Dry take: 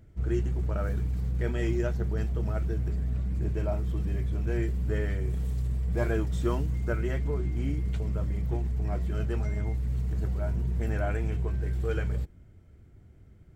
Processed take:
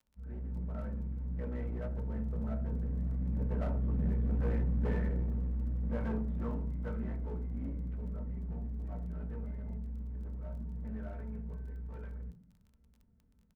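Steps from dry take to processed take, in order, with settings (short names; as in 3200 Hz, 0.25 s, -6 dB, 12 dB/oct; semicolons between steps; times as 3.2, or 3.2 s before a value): opening faded in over 0.56 s; Doppler pass-by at 4.41, 6 m/s, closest 4.7 m; LPF 2000 Hz 24 dB/oct; bell 110 Hz +14 dB 0.21 oct; comb 4.5 ms, depth 81%; in parallel at +1 dB: compressor, threshold -40 dBFS, peak gain reduction 16 dB; on the sum: one-sided clip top -37.5 dBFS, bottom -20.5 dBFS; crackle 18/s -46 dBFS; on a send at -4 dB: reverb RT60 0.40 s, pre-delay 3 ms; on the sum: gain -7 dB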